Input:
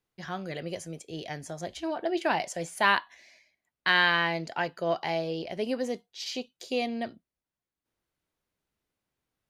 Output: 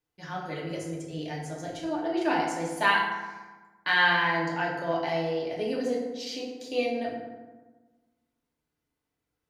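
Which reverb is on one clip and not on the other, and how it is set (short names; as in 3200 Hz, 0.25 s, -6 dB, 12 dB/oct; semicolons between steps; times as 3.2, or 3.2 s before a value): FDN reverb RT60 1.3 s, low-frequency decay 1.25×, high-frequency decay 0.5×, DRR -4 dB; gain -5 dB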